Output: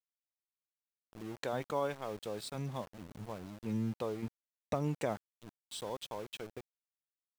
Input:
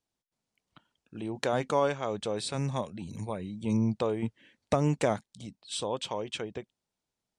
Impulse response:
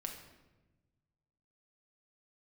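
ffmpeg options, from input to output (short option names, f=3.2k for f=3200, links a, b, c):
-af "afftdn=nr=15:nf=-46,aeval=exprs='val(0)*gte(abs(val(0)),0.0119)':c=same,volume=-8dB"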